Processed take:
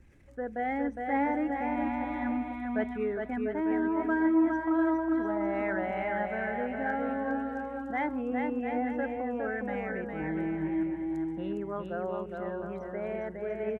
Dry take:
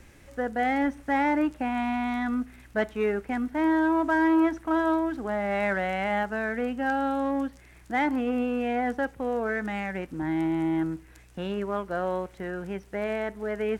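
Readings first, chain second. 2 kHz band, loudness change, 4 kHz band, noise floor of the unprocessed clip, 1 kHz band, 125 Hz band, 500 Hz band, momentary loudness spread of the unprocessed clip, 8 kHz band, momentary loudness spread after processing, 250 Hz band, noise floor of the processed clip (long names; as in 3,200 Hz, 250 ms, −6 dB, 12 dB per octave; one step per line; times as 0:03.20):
−5.5 dB, −4.0 dB, below −10 dB, −53 dBFS, −4.5 dB, −4.5 dB, −3.5 dB, 9 LU, can't be measured, 8 LU, −3.0 dB, −41 dBFS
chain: spectral envelope exaggerated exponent 1.5
bouncing-ball delay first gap 410 ms, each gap 0.7×, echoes 5
level −6 dB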